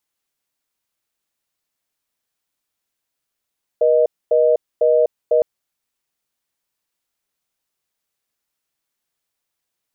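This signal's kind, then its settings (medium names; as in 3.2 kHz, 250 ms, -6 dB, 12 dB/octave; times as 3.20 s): call progress tone reorder tone, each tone -14 dBFS 1.61 s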